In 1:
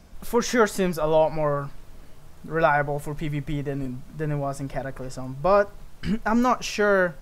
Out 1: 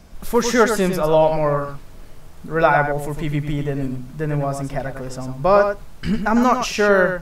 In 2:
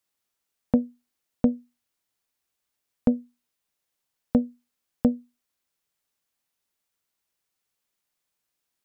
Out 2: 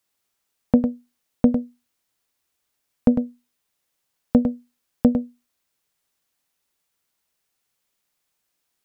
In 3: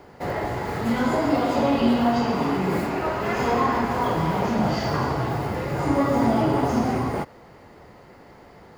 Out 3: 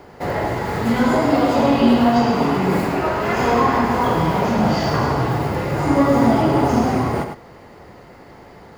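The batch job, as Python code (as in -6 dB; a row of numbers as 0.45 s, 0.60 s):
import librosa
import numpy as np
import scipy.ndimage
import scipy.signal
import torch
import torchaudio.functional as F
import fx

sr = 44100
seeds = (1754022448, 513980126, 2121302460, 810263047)

y = x + 10.0 ** (-7.5 / 20.0) * np.pad(x, (int(102 * sr / 1000.0), 0))[:len(x)]
y = y * 10.0 ** (4.5 / 20.0)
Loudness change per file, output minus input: +5.0 LU, +4.5 LU, +5.5 LU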